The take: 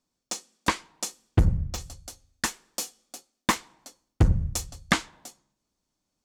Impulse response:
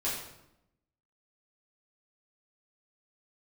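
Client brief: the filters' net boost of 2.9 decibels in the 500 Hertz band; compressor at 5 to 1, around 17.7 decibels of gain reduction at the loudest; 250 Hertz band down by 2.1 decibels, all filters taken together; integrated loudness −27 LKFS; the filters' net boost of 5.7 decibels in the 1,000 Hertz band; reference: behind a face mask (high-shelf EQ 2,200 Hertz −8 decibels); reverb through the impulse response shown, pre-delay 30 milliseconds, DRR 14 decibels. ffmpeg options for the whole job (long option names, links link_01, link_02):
-filter_complex "[0:a]equalizer=frequency=250:width_type=o:gain=-4.5,equalizer=frequency=500:width_type=o:gain=3.5,equalizer=frequency=1000:width_type=o:gain=7.5,acompressor=threshold=-36dB:ratio=5,asplit=2[link_01][link_02];[1:a]atrim=start_sample=2205,adelay=30[link_03];[link_02][link_03]afir=irnorm=-1:irlink=0,volume=-20dB[link_04];[link_01][link_04]amix=inputs=2:normalize=0,highshelf=frequency=2200:gain=-8,volume=17.5dB"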